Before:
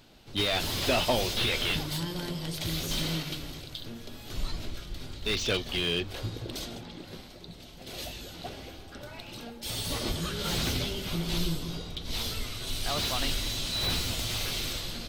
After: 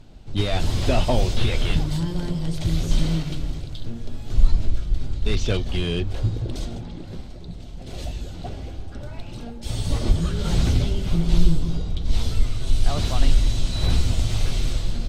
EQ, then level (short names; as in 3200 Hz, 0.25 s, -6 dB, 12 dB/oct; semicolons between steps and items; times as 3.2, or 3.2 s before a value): RIAA curve playback; bell 720 Hz +2.5 dB 0.77 oct; bell 7900 Hz +11.5 dB 1.2 oct; 0.0 dB